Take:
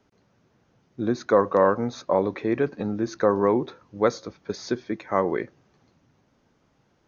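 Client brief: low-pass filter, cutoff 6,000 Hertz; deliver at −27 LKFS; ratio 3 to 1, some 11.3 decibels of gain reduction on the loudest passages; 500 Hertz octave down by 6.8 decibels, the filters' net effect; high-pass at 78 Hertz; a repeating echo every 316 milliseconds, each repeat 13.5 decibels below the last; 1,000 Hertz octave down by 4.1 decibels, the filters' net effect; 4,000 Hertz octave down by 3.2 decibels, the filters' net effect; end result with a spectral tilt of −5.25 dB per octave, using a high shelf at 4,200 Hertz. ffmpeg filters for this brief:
ffmpeg -i in.wav -af "highpass=78,lowpass=6000,equalizer=frequency=500:width_type=o:gain=-7.5,equalizer=frequency=1000:width_type=o:gain=-3,equalizer=frequency=4000:width_type=o:gain=-6,highshelf=frequency=4200:gain=6,acompressor=threshold=-35dB:ratio=3,aecho=1:1:316|632:0.211|0.0444,volume=11.5dB" out.wav

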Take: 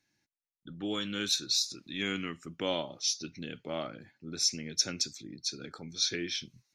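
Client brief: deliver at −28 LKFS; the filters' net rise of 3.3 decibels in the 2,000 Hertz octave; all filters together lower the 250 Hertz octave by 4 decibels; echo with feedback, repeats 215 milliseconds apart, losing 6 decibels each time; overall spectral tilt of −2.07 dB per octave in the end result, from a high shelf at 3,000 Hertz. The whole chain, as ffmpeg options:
ffmpeg -i in.wav -af "equalizer=frequency=250:width_type=o:gain=-5.5,equalizer=frequency=2000:width_type=o:gain=7.5,highshelf=frequency=3000:gain=-8.5,aecho=1:1:215|430|645|860|1075|1290:0.501|0.251|0.125|0.0626|0.0313|0.0157,volume=7dB" out.wav

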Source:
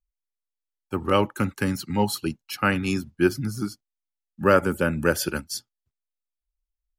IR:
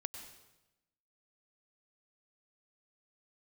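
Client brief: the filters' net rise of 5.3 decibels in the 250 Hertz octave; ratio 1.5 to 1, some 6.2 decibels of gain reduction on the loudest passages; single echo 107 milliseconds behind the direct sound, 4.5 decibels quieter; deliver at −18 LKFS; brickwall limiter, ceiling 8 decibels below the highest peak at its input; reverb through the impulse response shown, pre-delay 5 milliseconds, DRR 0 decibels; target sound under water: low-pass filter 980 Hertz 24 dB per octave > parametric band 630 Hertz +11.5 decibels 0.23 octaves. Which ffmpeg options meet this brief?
-filter_complex "[0:a]equalizer=frequency=250:width_type=o:gain=7,acompressor=threshold=-28dB:ratio=1.5,alimiter=limit=-16.5dB:level=0:latency=1,aecho=1:1:107:0.596,asplit=2[link_01][link_02];[1:a]atrim=start_sample=2205,adelay=5[link_03];[link_02][link_03]afir=irnorm=-1:irlink=0,volume=1.5dB[link_04];[link_01][link_04]amix=inputs=2:normalize=0,lowpass=frequency=980:width=0.5412,lowpass=frequency=980:width=1.3066,equalizer=frequency=630:width_type=o:width=0.23:gain=11.5,volume=6.5dB"

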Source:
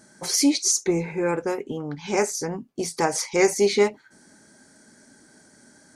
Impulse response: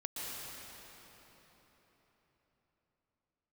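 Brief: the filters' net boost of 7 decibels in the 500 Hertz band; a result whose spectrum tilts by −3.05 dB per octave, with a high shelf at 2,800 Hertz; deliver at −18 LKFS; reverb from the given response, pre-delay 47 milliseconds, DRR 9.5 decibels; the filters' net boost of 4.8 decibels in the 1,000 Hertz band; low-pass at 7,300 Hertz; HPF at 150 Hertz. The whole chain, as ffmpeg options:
-filter_complex "[0:a]highpass=150,lowpass=7300,equalizer=frequency=500:width_type=o:gain=9,equalizer=frequency=1000:width_type=o:gain=3.5,highshelf=frequency=2800:gain=-8.5,asplit=2[link_01][link_02];[1:a]atrim=start_sample=2205,adelay=47[link_03];[link_02][link_03]afir=irnorm=-1:irlink=0,volume=-11.5dB[link_04];[link_01][link_04]amix=inputs=2:normalize=0,volume=1.5dB"

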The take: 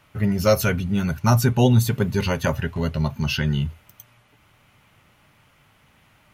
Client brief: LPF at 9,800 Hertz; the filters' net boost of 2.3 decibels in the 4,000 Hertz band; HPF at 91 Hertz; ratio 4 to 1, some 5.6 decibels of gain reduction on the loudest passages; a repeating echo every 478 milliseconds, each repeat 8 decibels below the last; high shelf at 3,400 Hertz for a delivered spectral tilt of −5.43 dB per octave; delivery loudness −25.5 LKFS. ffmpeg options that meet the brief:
ffmpeg -i in.wav -af "highpass=91,lowpass=9800,highshelf=frequency=3400:gain=-5,equalizer=frequency=4000:width_type=o:gain=7,acompressor=threshold=-19dB:ratio=4,aecho=1:1:478|956|1434|1912|2390:0.398|0.159|0.0637|0.0255|0.0102,volume=-0.5dB" out.wav

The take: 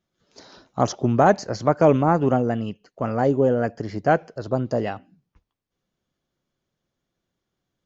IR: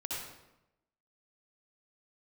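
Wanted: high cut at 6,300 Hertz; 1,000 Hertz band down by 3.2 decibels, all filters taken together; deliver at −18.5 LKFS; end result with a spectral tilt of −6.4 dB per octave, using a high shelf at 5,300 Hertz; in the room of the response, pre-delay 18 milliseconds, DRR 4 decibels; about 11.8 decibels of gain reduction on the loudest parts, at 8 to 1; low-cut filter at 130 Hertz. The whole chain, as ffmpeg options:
-filter_complex "[0:a]highpass=130,lowpass=6300,equalizer=frequency=1000:width_type=o:gain=-5,highshelf=frequency=5300:gain=4,acompressor=threshold=-24dB:ratio=8,asplit=2[link_01][link_02];[1:a]atrim=start_sample=2205,adelay=18[link_03];[link_02][link_03]afir=irnorm=-1:irlink=0,volume=-6dB[link_04];[link_01][link_04]amix=inputs=2:normalize=0,volume=11dB"

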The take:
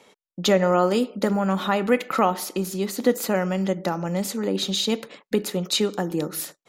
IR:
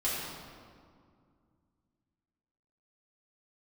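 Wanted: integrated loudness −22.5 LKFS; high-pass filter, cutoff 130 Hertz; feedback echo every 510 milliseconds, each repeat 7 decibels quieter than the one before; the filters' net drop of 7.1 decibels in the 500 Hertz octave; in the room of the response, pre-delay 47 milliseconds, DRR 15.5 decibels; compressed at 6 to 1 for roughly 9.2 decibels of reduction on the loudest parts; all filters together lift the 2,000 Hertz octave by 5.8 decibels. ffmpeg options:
-filter_complex "[0:a]highpass=130,equalizer=frequency=500:width_type=o:gain=-9,equalizer=frequency=2000:width_type=o:gain=7.5,acompressor=threshold=-26dB:ratio=6,aecho=1:1:510|1020|1530|2040|2550:0.447|0.201|0.0905|0.0407|0.0183,asplit=2[link_01][link_02];[1:a]atrim=start_sample=2205,adelay=47[link_03];[link_02][link_03]afir=irnorm=-1:irlink=0,volume=-23dB[link_04];[link_01][link_04]amix=inputs=2:normalize=0,volume=7dB"

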